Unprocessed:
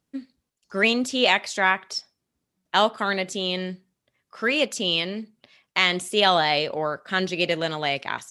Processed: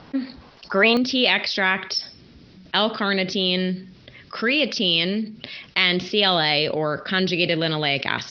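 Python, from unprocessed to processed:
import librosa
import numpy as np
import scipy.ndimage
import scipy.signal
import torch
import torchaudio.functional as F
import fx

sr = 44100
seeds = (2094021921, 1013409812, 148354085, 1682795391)

y = scipy.signal.sosfilt(scipy.signal.butter(16, 5400.0, 'lowpass', fs=sr, output='sos'), x)
y = fx.peak_eq(y, sr, hz=920.0, db=fx.steps((0.0, 8.0), (0.97, -9.5)), octaves=1.7)
y = fx.env_flatten(y, sr, amount_pct=50)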